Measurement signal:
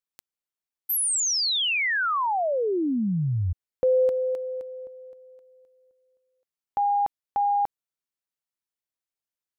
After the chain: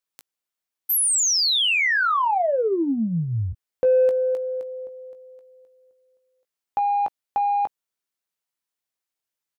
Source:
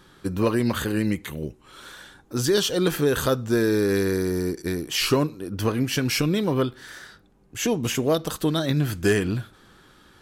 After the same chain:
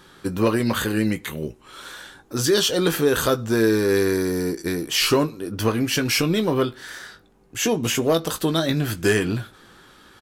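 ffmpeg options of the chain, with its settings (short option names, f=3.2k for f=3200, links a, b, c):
-filter_complex "[0:a]lowshelf=f=210:g=-6,asplit=2[a][b];[b]asoftclip=type=tanh:threshold=-23dB,volume=-8dB[c];[a][c]amix=inputs=2:normalize=0,asplit=2[d][e];[e]adelay=18,volume=-10dB[f];[d][f]amix=inputs=2:normalize=0,volume=1.5dB"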